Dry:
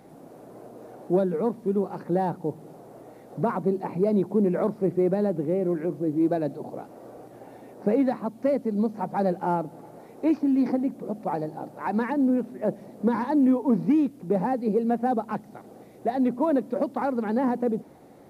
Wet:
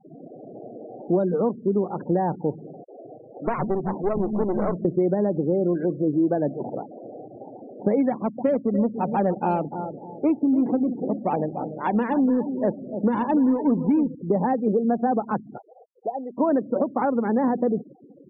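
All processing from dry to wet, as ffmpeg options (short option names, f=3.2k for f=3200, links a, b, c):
-filter_complex "[0:a]asettb=1/sr,asplit=3[a][b][c];[a]atrim=end=2.844[d];[b]atrim=start=2.84:end=4.85,asetpts=PTS-STARTPTS,afade=t=in:d=0.004:c=qsin,afade=t=out:st=2.006:d=0.004:c=qsin,acrossover=split=220|1800[e][f][g];[f]adelay=40[h];[e]adelay=200[i];[i][h][g]amix=inputs=3:normalize=0,atrim=end_sample=88641,aeval=exprs='clip(val(0),-1,0.0237)':c=same[j];[c]atrim=start=4.846[k];[d][j]acrossfade=d=0.004:c1=hsin:c2=qsin[l];[l][k]acrossfade=d=0.004:c1=qsin:c2=hsin,asettb=1/sr,asplit=3[m][n][o];[m]atrim=end=8.094[p];[n]atrim=start=8.09:end=14.15,asetpts=PTS-STARTPTS,afade=t=in:d=0.004:c=qsin,afade=t=out:st=6.056:d=0.004:c=qsin,highshelf=f=4k:g=-7,adynamicsmooth=sensitivity=5:basefreq=580,aecho=1:1:292|584|876:0.266|0.0825|0.0256,atrim=end_sample=267246[q];[o]atrim=start=14.146[r];[p][q]acrossfade=d=0.004:c1=hsin:c2=qsin[s];[s][r]acrossfade=d=0.004:c1=qsin:c2=hsin,asettb=1/sr,asplit=3[t][u][v];[t]atrim=end=15.584[w];[u]atrim=start=15.58:end=16.38,asetpts=PTS-STARTPTS,afade=t=in:d=0.004:c=qsin,afade=t=out:st=0.796:d=0.004:c=qsin,acrusher=bits=7:mix=0:aa=0.5,acrossover=split=1100|2300[x][y][z];[x]acompressor=threshold=-27dB:ratio=4[aa];[y]acompressor=threshold=-54dB:ratio=4[ab];[z]acompressor=threshold=-54dB:ratio=4[ac];[aa][ab][ac]amix=inputs=3:normalize=0,acrossover=split=460 2000:gain=0.158 1 0.112[ad][ae][af];[ad][ae][af]amix=inputs=3:normalize=0[ag];[v]atrim=start=16.376[ah];[w][ag]acrossfade=d=0.004:c1=hsin:c2=qsin[ai];[ai][ah]acrossfade=d=0.004:c1=qsin:c2=hsin,afftfilt=real='re*gte(hypot(re,im),0.0141)':imag='im*gte(hypot(re,im),0.0141)':win_size=1024:overlap=0.75,acompressor=threshold=-24dB:ratio=3,adynamicequalizer=threshold=0.00447:dfrequency=2100:dqfactor=0.7:tfrequency=2100:tqfactor=0.7:attack=5:release=100:ratio=0.375:range=2.5:mode=cutabove:tftype=highshelf,volume=5.5dB"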